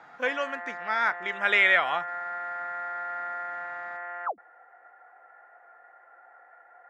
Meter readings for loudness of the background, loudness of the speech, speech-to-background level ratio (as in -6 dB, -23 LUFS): -35.0 LUFS, -25.0 LUFS, 10.0 dB